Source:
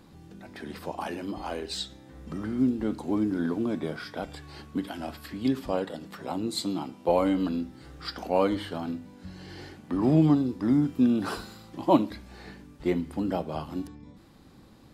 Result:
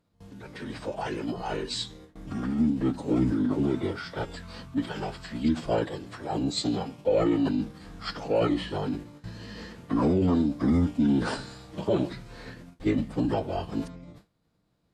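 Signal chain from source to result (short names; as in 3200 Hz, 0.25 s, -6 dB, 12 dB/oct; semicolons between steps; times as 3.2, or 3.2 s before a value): formant-preserving pitch shift -9 st; limiter -19 dBFS, peak gain reduction 11 dB; gate with hold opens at -41 dBFS; gain +3.5 dB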